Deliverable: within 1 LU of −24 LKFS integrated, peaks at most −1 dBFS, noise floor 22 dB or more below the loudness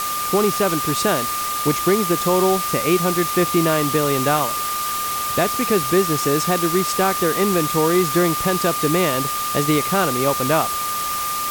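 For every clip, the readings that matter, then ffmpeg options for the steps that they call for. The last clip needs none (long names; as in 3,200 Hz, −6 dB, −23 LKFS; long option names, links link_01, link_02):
interfering tone 1,200 Hz; level of the tone −23 dBFS; background noise floor −24 dBFS; target noise floor −41 dBFS; integrated loudness −18.5 LKFS; sample peak −5.5 dBFS; target loudness −24.0 LKFS
→ -af "bandreject=frequency=1200:width=30"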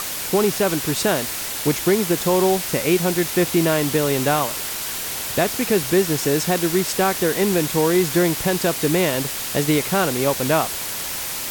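interfering tone none found; background noise floor −28 dBFS; target noise floor −42 dBFS
→ -af "afftdn=noise_reduction=14:noise_floor=-28"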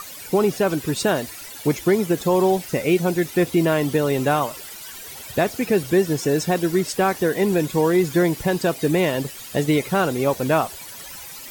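background noise floor −38 dBFS; target noise floor −43 dBFS
→ -af "afftdn=noise_reduction=6:noise_floor=-38"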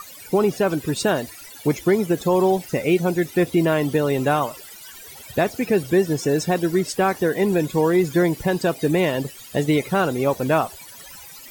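background noise floor −42 dBFS; target noise floor −43 dBFS
→ -af "afftdn=noise_reduction=6:noise_floor=-42"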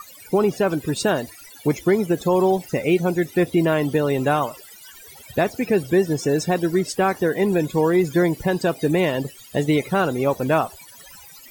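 background noise floor −45 dBFS; integrated loudness −21.0 LKFS; sample peak −8.5 dBFS; target loudness −24.0 LKFS
→ -af "volume=-3dB"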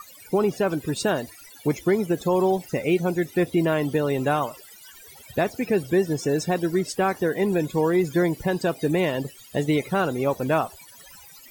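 integrated loudness −24.0 LKFS; sample peak −11.5 dBFS; background noise floor −48 dBFS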